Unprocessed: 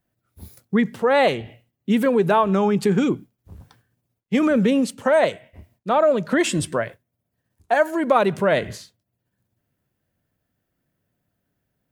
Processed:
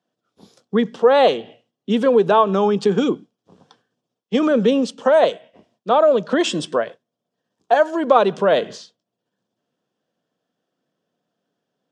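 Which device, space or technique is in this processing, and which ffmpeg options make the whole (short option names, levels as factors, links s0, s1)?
television speaker: -af "highpass=f=180:w=0.5412,highpass=f=180:w=1.3066,equalizer=f=470:t=q:w=4:g=7,equalizer=f=730:t=q:w=4:g=4,equalizer=f=1100:t=q:w=4:g=4,equalizer=f=2100:t=q:w=4:g=-8,equalizer=f=3300:t=q:w=4:g=7,equalizer=f=5400:t=q:w=4:g=4,lowpass=f=7200:w=0.5412,lowpass=f=7200:w=1.3066"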